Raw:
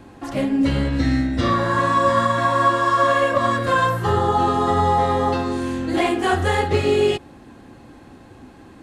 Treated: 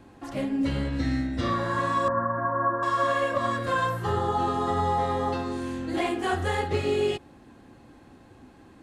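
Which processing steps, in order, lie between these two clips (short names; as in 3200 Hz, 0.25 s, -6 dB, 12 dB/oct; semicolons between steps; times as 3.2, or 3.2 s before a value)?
2.08–2.83 elliptic low-pass 1600 Hz, stop band 50 dB; gain -7.5 dB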